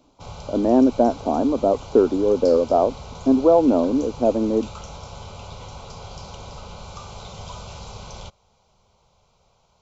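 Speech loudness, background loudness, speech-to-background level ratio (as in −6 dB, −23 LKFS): −19.5 LKFS, −38.5 LKFS, 19.0 dB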